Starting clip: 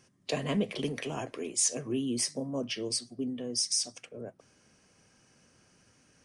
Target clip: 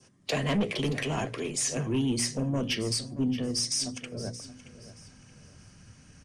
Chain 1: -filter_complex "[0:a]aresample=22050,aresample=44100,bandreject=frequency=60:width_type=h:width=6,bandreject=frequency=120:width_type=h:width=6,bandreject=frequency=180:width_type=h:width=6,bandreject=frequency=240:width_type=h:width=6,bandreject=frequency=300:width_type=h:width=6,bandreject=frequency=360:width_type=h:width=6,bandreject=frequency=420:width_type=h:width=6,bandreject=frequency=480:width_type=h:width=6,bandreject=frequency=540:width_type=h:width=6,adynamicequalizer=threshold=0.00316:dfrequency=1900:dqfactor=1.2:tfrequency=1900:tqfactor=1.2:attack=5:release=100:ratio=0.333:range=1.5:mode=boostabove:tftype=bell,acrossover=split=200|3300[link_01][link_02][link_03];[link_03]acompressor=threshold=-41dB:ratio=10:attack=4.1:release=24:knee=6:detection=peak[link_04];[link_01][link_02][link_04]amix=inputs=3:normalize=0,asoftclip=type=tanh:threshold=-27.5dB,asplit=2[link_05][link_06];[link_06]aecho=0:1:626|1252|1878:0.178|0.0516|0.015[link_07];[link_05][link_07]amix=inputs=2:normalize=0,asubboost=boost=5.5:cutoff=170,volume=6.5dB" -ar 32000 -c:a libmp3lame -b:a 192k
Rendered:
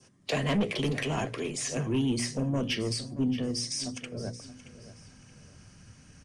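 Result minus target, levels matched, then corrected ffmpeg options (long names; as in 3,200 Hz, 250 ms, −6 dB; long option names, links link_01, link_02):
downward compressor: peak gain reduction +7.5 dB
-filter_complex "[0:a]aresample=22050,aresample=44100,bandreject=frequency=60:width_type=h:width=6,bandreject=frequency=120:width_type=h:width=6,bandreject=frequency=180:width_type=h:width=6,bandreject=frequency=240:width_type=h:width=6,bandreject=frequency=300:width_type=h:width=6,bandreject=frequency=360:width_type=h:width=6,bandreject=frequency=420:width_type=h:width=6,bandreject=frequency=480:width_type=h:width=6,bandreject=frequency=540:width_type=h:width=6,adynamicequalizer=threshold=0.00316:dfrequency=1900:dqfactor=1.2:tfrequency=1900:tqfactor=1.2:attack=5:release=100:ratio=0.333:range=1.5:mode=boostabove:tftype=bell,acrossover=split=200|3300[link_01][link_02][link_03];[link_03]acompressor=threshold=-32.5dB:ratio=10:attack=4.1:release=24:knee=6:detection=peak[link_04];[link_01][link_02][link_04]amix=inputs=3:normalize=0,asoftclip=type=tanh:threshold=-27.5dB,asplit=2[link_05][link_06];[link_06]aecho=0:1:626|1252|1878:0.178|0.0516|0.015[link_07];[link_05][link_07]amix=inputs=2:normalize=0,asubboost=boost=5.5:cutoff=170,volume=6.5dB" -ar 32000 -c:a libmp3lame -b:a 192k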